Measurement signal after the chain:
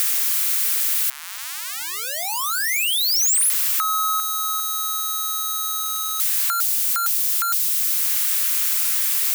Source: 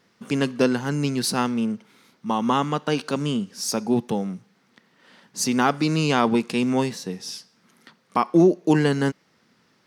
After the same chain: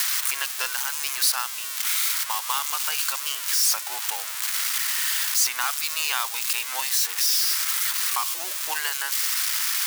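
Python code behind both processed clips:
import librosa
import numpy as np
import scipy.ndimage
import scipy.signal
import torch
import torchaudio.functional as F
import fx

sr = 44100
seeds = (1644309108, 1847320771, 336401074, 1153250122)

y = x + 0.5 * 10.0 ** (-15.0 / 20.0) * np.diff(np.sign(x), prepend=np.sign(x[:1]))
y = scipy.signal.sosfilt(scipy.signal.butter(4, 990.0, 'highpass', fs=sr, output='sos'), y)
y = fx.band_squash(y, sr, depth_pct=70)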